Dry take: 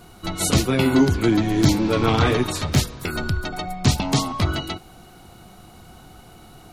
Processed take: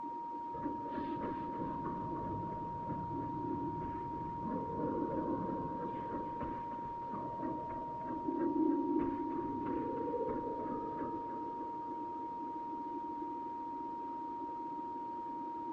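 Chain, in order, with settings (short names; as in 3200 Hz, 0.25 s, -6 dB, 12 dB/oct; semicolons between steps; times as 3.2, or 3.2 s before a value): Bessel low-pass 11000 Hz; high shelf 6400 Hz -10 dB; compressor 3:1, threshold -34 dBFS, peak gain reduction 16.5 dB; requantised 8-bit, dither triangular; vowel filter a; whisperiser; split-band echo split 470 Hz, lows 0.18 s, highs 0.131 s, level -7 dB; spring tank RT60 3.3 s, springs 52 ms, chirp 50 ms, DRR 8.5 dB; whine 2200 Hz -45 dBFS; speed mistake 78 rpm record played at 33 rpm; gain +5 dB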